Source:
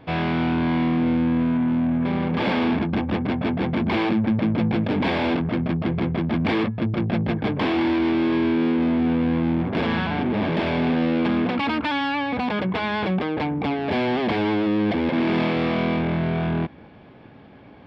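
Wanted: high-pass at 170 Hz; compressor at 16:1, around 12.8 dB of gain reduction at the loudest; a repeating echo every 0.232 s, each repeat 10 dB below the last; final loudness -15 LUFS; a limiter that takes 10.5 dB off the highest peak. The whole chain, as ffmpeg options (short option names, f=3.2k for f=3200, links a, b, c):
-af "highpass=170,acompressor=threshold=-31dB:ratio=16,alimiter=level_in=6.5dB:limit=-24dB:level=0:latency=1,volume=-6.5dB,aecho=1:1:232|464|696|928:0.316|0.101|0.0324|0.0104,volume=24dB"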